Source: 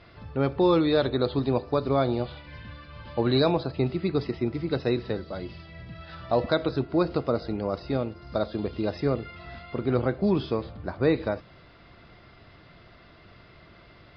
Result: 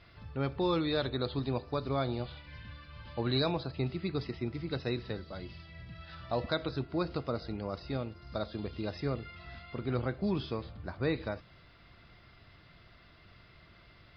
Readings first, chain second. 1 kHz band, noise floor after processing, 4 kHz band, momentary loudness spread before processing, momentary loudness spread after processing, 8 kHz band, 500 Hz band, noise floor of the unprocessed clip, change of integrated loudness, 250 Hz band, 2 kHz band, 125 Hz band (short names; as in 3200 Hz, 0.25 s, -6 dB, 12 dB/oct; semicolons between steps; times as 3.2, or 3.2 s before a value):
-7.5 dB, -59 dBFS, -3.5 dB, 17 LU, 16 LU, n/a, -10.0 dB, -53 dBFS, -8.0 dB, -8.5 dB, -5.0 dB, -5.5 dB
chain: bell 450 Hz -7 dB 2.9 oct; gain -3 dB